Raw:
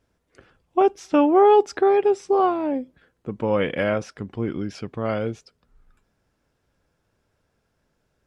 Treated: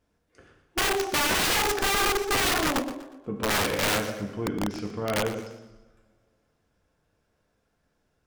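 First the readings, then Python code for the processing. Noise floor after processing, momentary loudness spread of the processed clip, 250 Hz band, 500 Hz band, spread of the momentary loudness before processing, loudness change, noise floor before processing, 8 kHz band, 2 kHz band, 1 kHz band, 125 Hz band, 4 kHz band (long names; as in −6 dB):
−74 dBFS, 11 LU, −7.0 dB, −10.0 dB, 16 LU, −4.0 dB, −73 dBFS, can't be measured, +7.0 dB, −6.0 dB, −2.0 dB, +13.5 dB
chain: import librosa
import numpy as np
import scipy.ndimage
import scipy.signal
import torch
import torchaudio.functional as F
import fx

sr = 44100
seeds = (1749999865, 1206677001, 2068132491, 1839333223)

y = fx.rev_double_slope(x, sr, seeds[0], early_s=0.91, late_s=2.7, knee_db=-25, drr_db=0.5)
y = (np.mod(10.0 ** (15.0 / 20.0) * y + 1.0, 2.0) - 1.0) / 10.0 ** (15.0 / 20.0)
y = fx.echo_warbled(y, sr, ms=120, feedback_pct=35, rate_hz=2.8, cents=137, wet_db=-13.0)
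y = y * 10.0 ** (-4.5 / 20.0)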